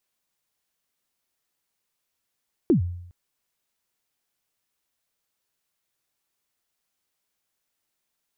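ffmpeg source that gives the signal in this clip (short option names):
-f lavfi -i "aevalsrc='0.237*pow(10,-3*t/0.75)*sin(2*PI*(390*0.112/log(88/390)*(exp(log(88/390)*min(t,0.112)/0.112)-1)+88*max(t-0.112,0)))':d=0.41:s=44100"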